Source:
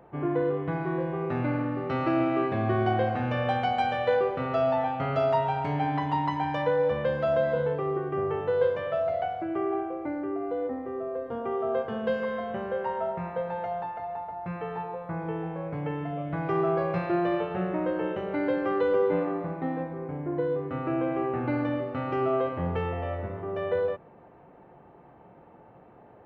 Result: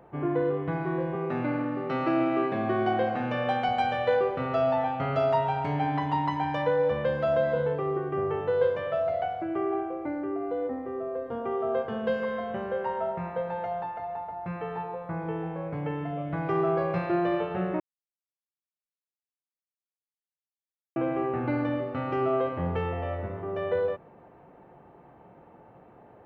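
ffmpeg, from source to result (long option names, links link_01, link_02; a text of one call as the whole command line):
ffmpeg -i in.wav -filter_complex "[0:a]asettb=1/sr,asplit=3[link_01][link_02][link_03];[link_01]atrim=end=1.154[link_04];[link_02]atrim=start=1.15:end=3.69,asetpts=PTS-STARTPTS,afade=type=in:duration=0.004:curve=qsin,afade=type=out:start_time=2.536:duration=0.004:curve=qsin,highpass=frequency=140:width=0.5412,highpass=frequency=140:width=1.3066[link_05];[link_03]atrim=start=3.686[link_06];[link_04][link_05]acrossfade=duration=0.004:curve1=hsin:curve2=qsin[link_07];[link_07][link_06]acrossfade=duration=0.004:curve1=qsin:curve2=hsin,asplit=3[link_08][link_09][link_10];[link_08]atrim=end=17.8,asetpts=PTS-STARTPTS,afade=type=out:start_time=17.796:duration=0.004:curve=hsin[link_11];[link_09]atrim=start=17.8:end=20.96,asetpts=PTS-STARTPTS,volume=0[link_12];[link_10]atrim=start=20.96,asetpts=PTS-STARTPTS,afade=type=in:duration=0.004:curve=hsin[link_13];[link_11][link_12][link_13]concat=n=3:v=0:a=1" out.wav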